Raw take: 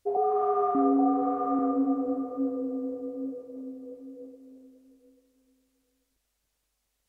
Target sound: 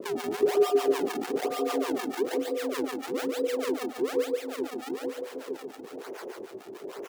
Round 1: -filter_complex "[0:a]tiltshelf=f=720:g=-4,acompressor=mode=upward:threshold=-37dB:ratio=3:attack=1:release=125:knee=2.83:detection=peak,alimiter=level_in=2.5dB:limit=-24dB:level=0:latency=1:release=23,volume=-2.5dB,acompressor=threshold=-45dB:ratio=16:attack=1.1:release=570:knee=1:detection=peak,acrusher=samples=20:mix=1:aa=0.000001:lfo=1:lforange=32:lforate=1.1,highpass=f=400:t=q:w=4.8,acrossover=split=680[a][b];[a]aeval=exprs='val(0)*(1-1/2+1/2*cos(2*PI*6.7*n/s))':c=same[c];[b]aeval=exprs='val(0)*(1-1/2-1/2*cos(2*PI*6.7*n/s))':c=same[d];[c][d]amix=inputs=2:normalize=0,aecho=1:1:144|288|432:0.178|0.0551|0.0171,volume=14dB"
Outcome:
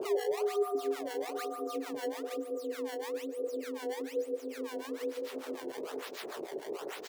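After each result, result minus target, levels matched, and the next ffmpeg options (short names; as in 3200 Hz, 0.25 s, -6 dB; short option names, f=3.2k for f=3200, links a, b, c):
compressor: peak gain reduction +7 dB; echo-to-direct -10.5 dB; decimation with a swept rate: distortion -8 dB
-filter_complex "[0:a]tiltshelf=f=720:g=-4,acompressor=mode=upward:threshold=-37dB:ratio=3:attack=1:release=125:knee=2.83:detection=peak,alimiter=level_in=2.5dB:limit=-24dB:level=0:latency=1:release=23,volume=-2.5dB,acompressor=threshold=-37.5dB:ratio=16:attack=1.1:release=570:knee=1:detection=peak,acrusher=samples=20:mix=1:aa=0.000001:lfo=1:lforange=32:lforate=1.1,highpass=f=400:t=q:w=4.8,acrossover=split=680[a][b];[a]aeval=exprs='val(0)*(1-1/2+1/2*cos(2*PI*6.7*n/s))':c=same[c];[b]aeval=exprs='val(0)*(1-1/2-1/2*cos(2*PI*6.7*n/s))':c=same[d];[c][d]amix=inputs=2:normalize=0,aecho=1:1:144|288|432:0.178|0.0551|0.0171,volume=14dB"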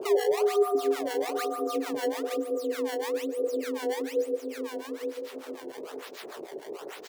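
echo-to-direct -10.5 dB; decimation with a swept rate: distortion -9 dB
-filter_complex "[0:a]tiltshelf=f=720:g=-4,acompressor=mode=upward:threshold=-37dB:ratio=3:attack=1:release=125:knee=2.83:detection=peak,alimiter=level_in=2.5dB:limit=-24dB:level=0:latency=1:release=23,volume=-2.5dB,acompressor=threshold=-37.5dB:ratio=16:attack=1.1:release=570:knee=1:detection=peak,acrusher=samples=20:mix=1:aa=0.000001:lfo=1:lforange=32:lforate=1.1,highpass=f=400:t=q:w=4.8,acrossover=split=680[a][b];[a]aeval=exprs='val(0)*(1-1/2+1/2*cos(2*PI*6.7*n/s))':c=same[c];[b]aeval=exprs='val(0)*(1-1/2-1/2*cos(2*PI*6.7*n/s))':c=same[d];[c][d]amix=inputs=2:normalize=0,aecho=1:1:144|288|432|576:0.596|0.185|0.0572|0.0177,volume=14dB"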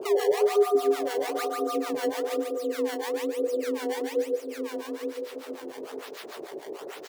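decimation with a swept rate: distortion -9 dB
-filter_complex "[0:a]tiltshelf=f=720:g=-4,acompressor=mode=upward:threshold=-37dB:ratio=3:attack=1:release=125:knee=2.83:detection=peak,alimiter=level_in=2.5dB:limit=-24dB:level=0:latency=1:release=23,volume=-2.5dB,acompressor=threshold=-37.5dB:ratio=16:attack=1.1:release=570:knee=1:detection=peak,acrusher=samples=50:mix=1:aa=0.000001:lfo=1:lforange=80:lforate=1.1,highpass=f=400:t=q:w=4.8,acrossover=split=680[a][b];[a]aeval=exprs='val(0)*(1-1/2+1/2*cos(2*PI*6.7*n/s))':c=same[c];[b]aeval=exprs='val(0)*(1-1/2-1/2*cos(2*PI*6.7*n/s))':c=same[d];[c][d]amix=inputs=2:normalize=0,aecho=1:1:144|288|432|576:0.596|0.185|0.0572|0.0177,volume=14dB"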